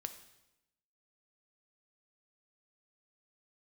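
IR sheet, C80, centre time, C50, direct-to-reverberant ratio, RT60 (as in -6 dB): 13.5 dB, 10 ms, 11.0 dB, 8.0 dB, 0.90 s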